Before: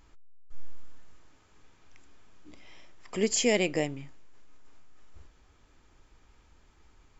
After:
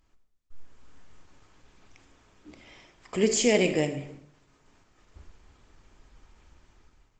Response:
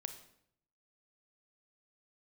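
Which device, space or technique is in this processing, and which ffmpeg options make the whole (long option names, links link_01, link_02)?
speakerphone in a meeting room: -filter_complex "[0:a]asettb=1/sr,asplit=3[link_01][link_02][link_03];[link_01]atrim=end=3.364[link_04];[link_02]atrim=start=3.36:end=4,asetpts=PTS-STARTPTS,afade=type=in:duration=0.004:curve=qsin,afade=type=out:start_time=0.636:duration=0.004:curve=qsin,equalizer=frequency=1100:width_type=o:width=1.4:gain=-3[link_05];[link_03]atrim=start=3.996[link_06];[link_04][link_05]acrossfade=duration=0.004:curve1=hsin:curve2=qsin[link_07];[link_07][link_06]acrossfade=duration=0.004:curve1=qsin:curve2=hsin[link_08];[1:a]atrim=start_sample=2205[link_09];[link_08][link_09]afir=irnorm=-1:irlink=0,dynaudnorm=framelen=480:gausssize=3:maxgain=12.5dB,volume=-5dB" -ar 48000 -c:a libopus -b:a 16k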